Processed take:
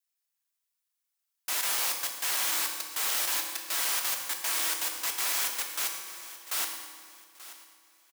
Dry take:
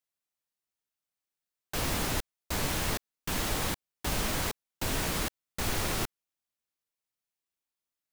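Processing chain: slices played last to first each 148 ms, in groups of 5; high-pass 970 Hz 12 dB/octave; treble shelf 5.6 kHz +7 dB; feedback delay 883 ms, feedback 33%, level -16 dB; reverberation RT60 1.7 s, pre-delay 3 ms, DRR 2.5 dB

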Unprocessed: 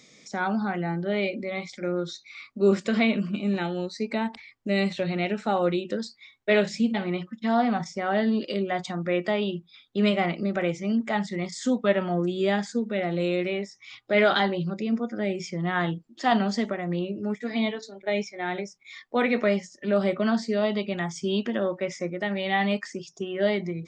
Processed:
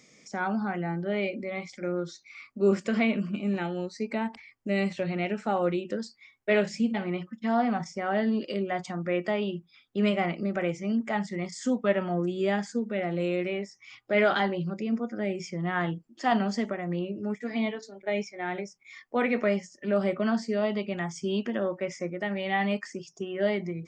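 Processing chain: peaking EQ 3.8 kHz -10.5 dB 0.29 oct; trim -2.5 dB

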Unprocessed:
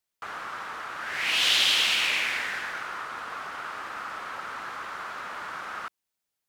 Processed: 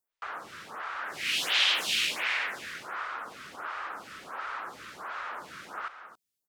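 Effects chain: delay 273 ms -10.5 dB; lamp-driven phase shifter 1.4 Hz

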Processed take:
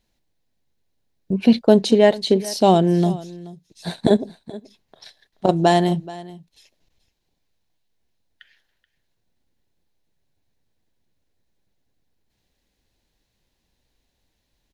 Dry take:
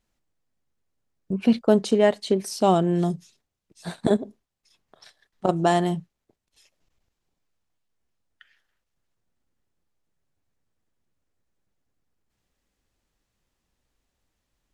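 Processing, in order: graphic EQ with 31 bands 1.25 kHz -10 dB, 4 kHz +6 dB, 8 kHz -5 dB; on a send: delay 429 ms -19 dB; on the sum: trim +5 dB

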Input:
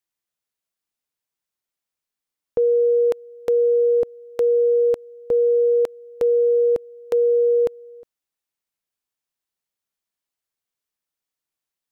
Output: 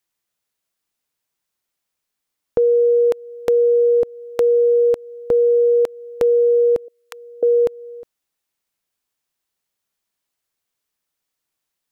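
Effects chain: 6.88–7.43 s: high-pass 1.1 kHz 24 dB/octave; in parallel at +1.5 dB: compression, threshold -27 dBFS, peak gain reduction 10.5 dB

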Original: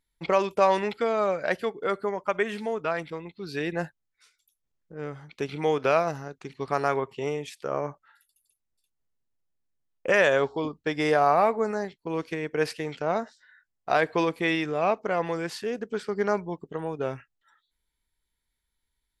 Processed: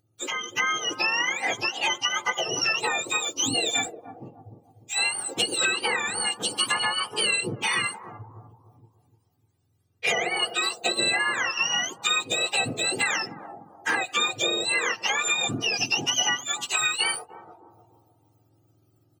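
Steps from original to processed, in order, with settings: spectrum inverted on a logarithmic axis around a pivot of 1.1 kHz; comb 2.5 ms, depth 42%; compression 10:1, threshold -39 dBFS, peak gain reduction 21.5 dB; peaking EQ 1.3 kHz +2.5 dB 0.33 oct; level rider gain up to 8.5 dB; treble shelf 2.7 kHz +9 dB; on a send: bucket-brigade echo 298 ms, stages 2048, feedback 38%, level -9 dB; on the sum: trim +4.5 dB

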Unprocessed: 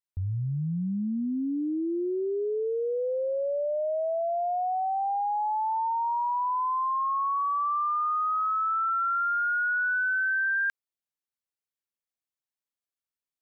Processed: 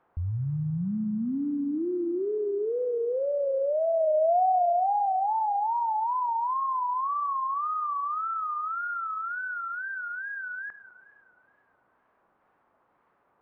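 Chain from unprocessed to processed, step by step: added noise blue -45 dBFS; dynamic bell 690 Hz, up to +6 dB, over -42 dBFS, Q 4.6; companded quantiser 8-bit; low-pass 1.2 kHz 24 dB/octave; multi-head delay 104 ms, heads first and second, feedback 63%, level -19 dB; wow and flutter 110 cents

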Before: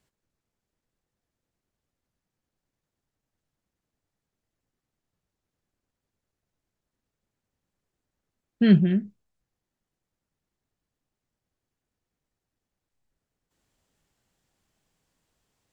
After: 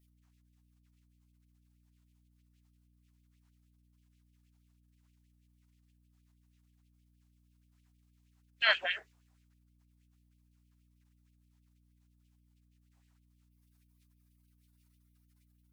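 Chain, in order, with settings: spectral gate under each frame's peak -25 dB weak; LFO high-pass sine 6.3 Hz 740–2800 Hz; hum 60 Hz, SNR 23 dB; trim +7.5 dB

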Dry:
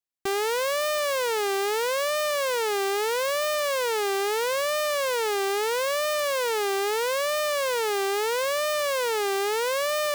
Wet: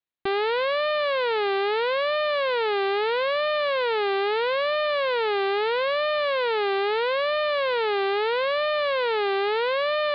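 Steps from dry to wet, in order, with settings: steep low-pass 4.3 kHz 72 dB/octave; trim +2 dB

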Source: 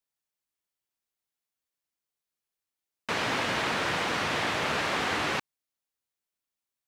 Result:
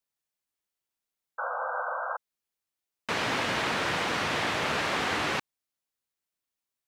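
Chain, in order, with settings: painted sound noise, 1.38–2.17 s, 480–1600 Hz -32 dBFS

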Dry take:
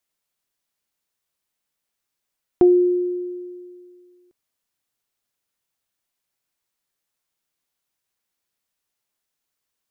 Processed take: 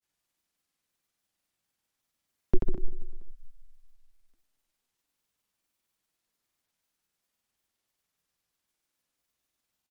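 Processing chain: frequency shift -350 Hz; feedback delay 94 ms, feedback 58%, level -8 dB; granulator

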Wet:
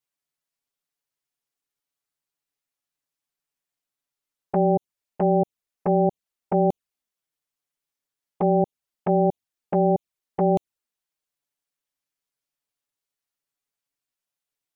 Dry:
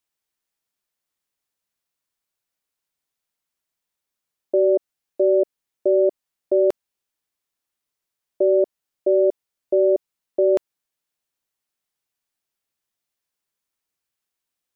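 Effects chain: ring modulator 200 Hz; touch-sensitive flanger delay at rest 7.1 ms, full sweep at -19 dBFS; trim +1.5 dB

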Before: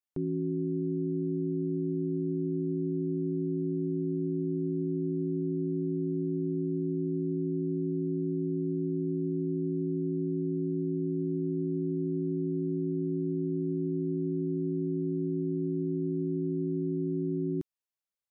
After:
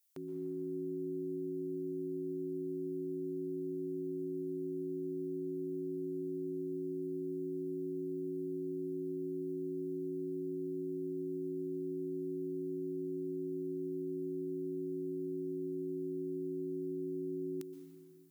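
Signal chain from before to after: differentiator; on a send: reverberation RT60 2.7 s, pre-delay 113 ms, DRR 7 dB; on the sum: trim +15.5 dB

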